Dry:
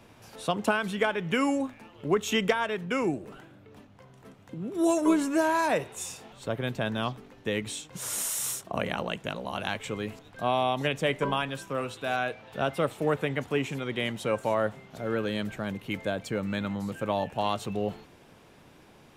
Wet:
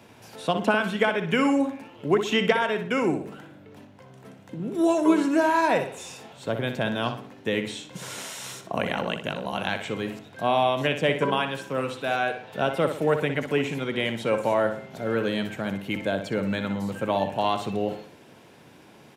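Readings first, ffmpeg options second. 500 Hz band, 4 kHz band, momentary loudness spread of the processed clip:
+4.0 dB, +3.5 dB, 13 LU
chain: -filter_complex "[0:a]highpass=110,bandreject=f=1200:w=12,acrossover=split=5000[s0][s1];[s1]acompressor=threshold=0.00316:ratio=4:attack=1:release=60[s2];[s0][s2]amix=inputs=2:normalize=0,asplit=2[s3][s4];[s4]adelay=61,lowpass=f=4300:p=1,volume=0.398,asplit=2[s5][s6];[s6]adelay=61,lowpass=f=4300:p=1,volume=0.42,asplit=2[s7][s8];[s8]adelay=61,lowpass=f=4300:p=1,volume=0.42,asplit=2[s9][s10];[s10]adelay=61,lowpass=f=4300:p=1,volume=0.42,asplit=2[s11][s12];[s12]adelay=61,lowpass=f=4300:p=1,volume=0.42[s13];[s3][s5][s7][s9][s11][s13]amix=inputs=6:normalize=0,volume=1.5"

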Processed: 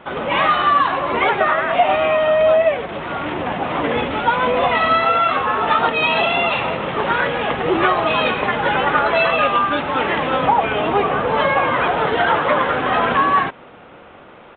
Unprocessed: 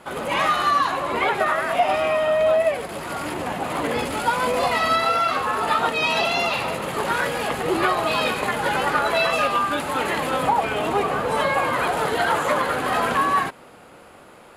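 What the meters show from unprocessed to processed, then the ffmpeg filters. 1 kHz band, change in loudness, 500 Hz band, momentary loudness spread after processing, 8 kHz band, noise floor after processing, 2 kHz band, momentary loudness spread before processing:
+4.5 dB, +4.5 dB, +4.5 dB, 6 LU, under -40 dB, -42 dBFS, +4.5 dB, 6 LU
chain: -af "aresample=8000,aresample=44100,volume=1.68"

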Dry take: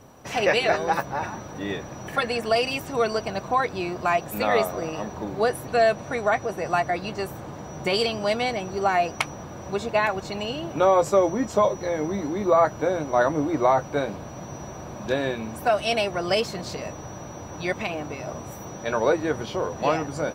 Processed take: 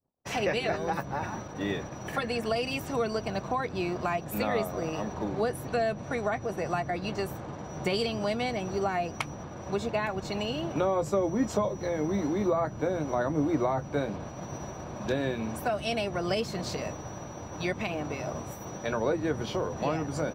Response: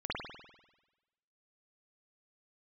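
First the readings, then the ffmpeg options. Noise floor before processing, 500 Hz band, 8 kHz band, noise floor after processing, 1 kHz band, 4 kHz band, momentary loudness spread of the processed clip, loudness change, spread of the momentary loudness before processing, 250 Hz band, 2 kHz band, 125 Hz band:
-39 dBFS, -6.5 dB, -4.5 dB, -41 dBFS, -8.0 dB, -6.5 dB, 8 LU, -6.5 dB, 12 LU, -1.5 dB, -7.5 dB, -0.5 dB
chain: -filter_complex "[0:a]anlmdn=0.0251,agate=range=0.0224:threshold=0.02:ratio=3:detection=peak,acrossover=split=310[s0][s1];[s1]acompressor=threshold=0.0251:ratio=2.5[s2];[s0][s2]amix=inputs=2:normalize=0"

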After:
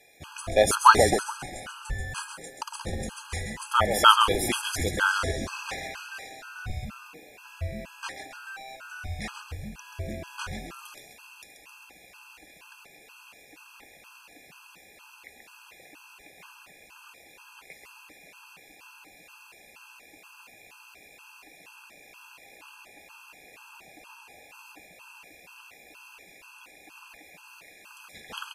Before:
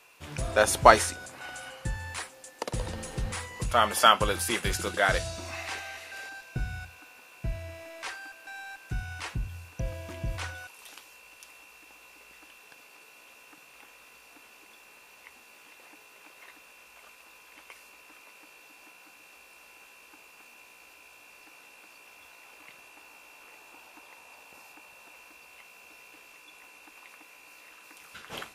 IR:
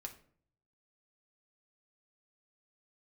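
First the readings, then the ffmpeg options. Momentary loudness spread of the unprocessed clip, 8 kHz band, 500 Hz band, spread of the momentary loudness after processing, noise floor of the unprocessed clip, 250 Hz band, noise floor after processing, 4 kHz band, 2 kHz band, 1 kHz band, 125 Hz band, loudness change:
22 LU, +1.0 dB, +0.5 dB, 23 LU, -55 dBFS, +3.0 dB, -54 dBFS, +3.0 dB, +1.5 dB, +2.5 dB, -0.5 dB, +2.5 dB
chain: -filter_complex "[0:a]asplit=7[s0][s1][s2][s3][s4][s5][s6];[s1]adelay=133,afreqshift=-130,volume=0.473[s7];[s2]adelay=266,afreqshift=-260,volume=0.226[s8];[s3]adelay=399,afreqshift=-390,volume=0.108[s9];[s4]adelay=532,afreqshift=-520,volume=0.0525[s10];[s5]adelay=665,afreqshift=-650,volume=0.0251[s11];[s6]adelay=798,afreqshift=-780,volume=0.012[s12];[s0][s7][s8][s9][s10][s11][s12]amix=inputs=7:normalize=0,afftfilt=real='re*gt(sin(2*PI*2.1*pts/sr)*(1-2*mod(floor(b*sr/1024/830),2)),0)':imag='im*gt(sin(2*PI*2.1*pts/sr)*(1-2*mod(floor(b*sr/1024/830),2)),0)':win_size=1024:overlap=0.75,volume=1.5"

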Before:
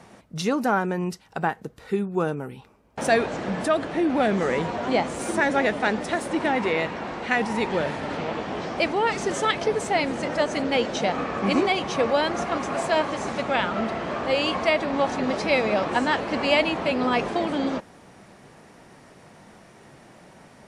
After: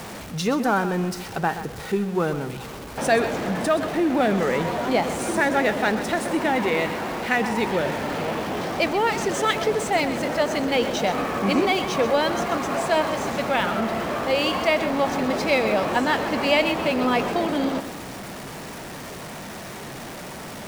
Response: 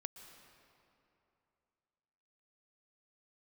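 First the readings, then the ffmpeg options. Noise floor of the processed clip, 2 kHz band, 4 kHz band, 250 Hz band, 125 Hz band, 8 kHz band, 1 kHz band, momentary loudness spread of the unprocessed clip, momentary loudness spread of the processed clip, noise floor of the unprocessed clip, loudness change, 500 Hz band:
-36 dBFS, +1.5 dB, +2.0 dB, +2.0 dB, +2.5 dB, +4.0 dB, +1.5 dB, 8 LU, 14 LU, -51 dBFS, +1.5 dB, +1.5 dB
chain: -filter_complex "[0:a]aeval=exprs='val(0)+0.5*0.0251*sgn(val(0))':c=same,asplit=2[s0][s1];[1:a]atrim=start_sample=2205,adelay=127[s2];[s1][s2]afir=irnorm=-1:irlink=0,volume=0.422[s3];[s0][s3]amix=inputs=2:normalize=0"

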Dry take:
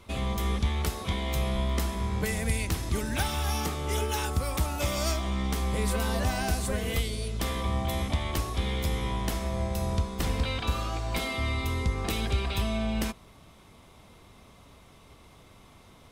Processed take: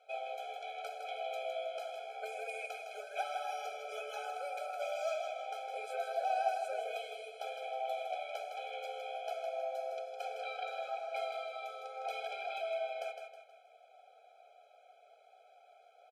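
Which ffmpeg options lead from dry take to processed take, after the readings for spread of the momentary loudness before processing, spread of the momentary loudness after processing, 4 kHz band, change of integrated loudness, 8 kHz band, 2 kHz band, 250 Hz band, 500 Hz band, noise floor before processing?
3 LU, 6 LU, -14.0 dB, -10.0 dB, -21.0 dB, -9.0 dB, under -40 dB, -3.5 dB, -54 dBFS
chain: -filter_complex "[0:a]highpass=410,highshelf=f=7800:g=8,flanger=delay=3.9:depth=9.5:regen=-54:speed=0.8:shape=triangular,asplit=3[s0][s1][s2];[s0]bandpass=f=730:t=q:w=8,volume=1[s3];[s1]bandpass=f=1090:t=q:w=8,volume=0.501[s4];[s2]bandpass=f=2440:t=q:w=8,volume=0.355[s5];[s3][s4][s5]amix=inputs=3:normalize=0,asplit=2[s6][s7];[s7]aecho=0:1:159|318|477|636|795:0.473|0.185|0.072|0.0281|0.0109[s8];[s6][s8]amix=inputs=2:normalize=0,afftfilt=real='re*eq(mod(floor(b*sr/1024/430),2),1)':imag='im*eq(mod(floor(b*sr/1024/430),2),1)':win_size=1024:overlap=0.75,volume=3.35"

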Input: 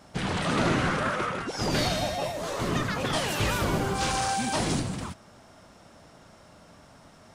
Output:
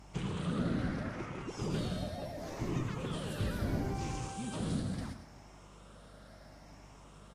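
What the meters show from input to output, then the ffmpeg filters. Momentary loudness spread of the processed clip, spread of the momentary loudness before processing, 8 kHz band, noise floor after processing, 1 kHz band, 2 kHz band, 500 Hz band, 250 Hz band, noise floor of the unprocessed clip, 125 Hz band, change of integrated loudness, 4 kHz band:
20 LU, 6 LU, -15.5 dB, -55 dBFS, -15.5 dB, -16.0 dB, -11.0 dB, -6.0 dB, -54 dBFS, -5.0 dB, -10.0 dB, -15.5 dB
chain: -filter_complex "[0:a]afftfilt=real='re*pow(10,7/40*sin(2*PI*(0.71*log(max(b,1)*sr/1024/100)/log(2)-(0.73)*(pts-256)/sr)))':imag='im*pow(10,7/40*sin(2*PI*(0.71*log(max(b,1)*sr/1024/100)/log(2)-(0.73)*(pts-256)/sr)))':win_size=1024:overlap=0.75,acrossover=split=380[s0][s1];[s1]acompressor=threshold=0.00708:ratio=3[s2];[s0][s2]amix=inputs=2:normalize=0,aeval=exprs='val(0)+0.00355*(sin(2*PI*50*n/s)+sin(2*PI*2*50*n/s)/2+sin(2*PI*3*50*n/s)/3+sin(2*PI*4*50*n/s)/4+sin(2*PI*5*50*n/s)/5)':c=same,aecho=1:1:106|212|318:0.316|0.0822|0.0214,volume=0.501" -ar 32000 -c:a aac -b:a 48k

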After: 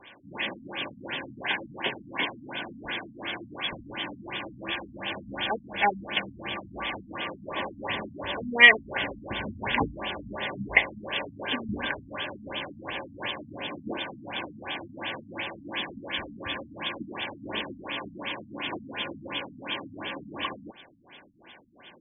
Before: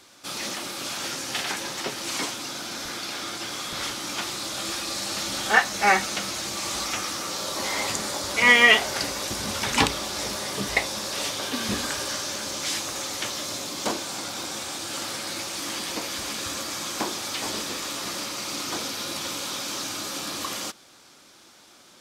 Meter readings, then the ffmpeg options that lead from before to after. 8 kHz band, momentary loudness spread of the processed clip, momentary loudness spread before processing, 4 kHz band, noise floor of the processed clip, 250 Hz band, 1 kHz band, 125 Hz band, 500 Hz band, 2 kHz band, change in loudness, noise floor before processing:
under -40 dB, 9 LU, 10 LU, -5.5 dB, -53 dBFS, -2.5 dB, -4.5 dB, -2.0 dB, -3.5 dB, -1.5 dB, -4.0 dB, -53 dBFS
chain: -filter_complex "[0:a]asplit=2[s0][s1];[s1]acompressor=threshold=0.0158:ratio=6,volume=1.19[s2];[s0][s2]amix=inputs=2:normalize=0,crystalizer=i=7:c=0,asuperstop=centerf=1300:order=8:qfactor=4.9,afftfilt=real='re*lt(b*sr/1024,260*pow(3600/260,0.5+0.5*sin(2*PI*2.8*pts/sr)))':imag='im*lt(b*sr/1024,260*pow(3600/260,0.5+0.5*sin(2*PI*2.8*pts/sr)))':win_size=1024:overlap=0.75,volume=0.562"

